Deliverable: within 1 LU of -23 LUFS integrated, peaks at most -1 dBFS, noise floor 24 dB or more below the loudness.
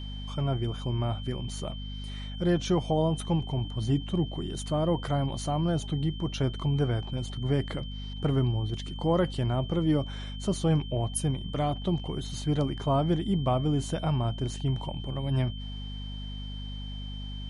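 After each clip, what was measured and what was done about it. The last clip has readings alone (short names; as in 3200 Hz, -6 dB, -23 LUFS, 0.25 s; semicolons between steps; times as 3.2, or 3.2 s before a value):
hum 50 Hz; harmonics up to 250 Hz; hum level -35 dBFS; steady tone 3100 Hz; tone level -44 dBFS; loudness -30.0 LUFS; peak -14.5 dBFS; loudness target -23.0 LUFS
-> notches 50/100/150/200/250 Hz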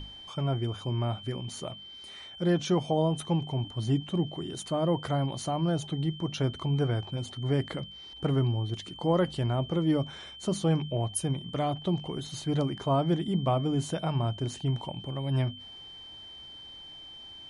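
hum none; steady tone 3100 Hz; tone level -44 dBFS
-> notch 3100 Hz, Q 30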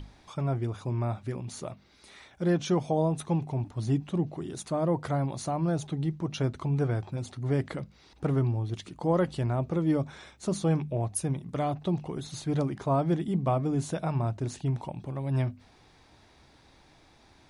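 steady tone none; loudness -30.0 LUFS; peak -14.5 dBFS; loudness target -23.0 LUFS
-> gain +7 dB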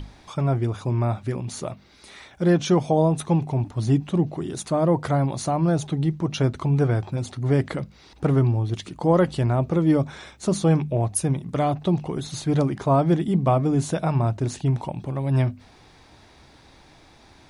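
loudness -23.0 LUFS; peak -7.5 dBFS; noise floor -52 dBFS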